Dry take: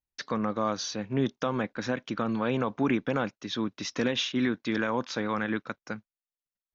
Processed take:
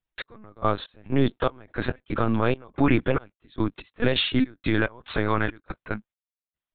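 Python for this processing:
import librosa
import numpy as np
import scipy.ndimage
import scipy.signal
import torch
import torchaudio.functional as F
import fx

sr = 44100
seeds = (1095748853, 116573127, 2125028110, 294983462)

y = fx.step_gate(x, sr, bpm=71, pattern='x..x.xx.x.xx.x', floor_db=-24.0, edge_ms=4.5)
y = fx.lpc_vocoder(y, sr, seeds[0], excitation='pitch_kept', order=16)
y = y * librosa.db_to_amplitude(6.5)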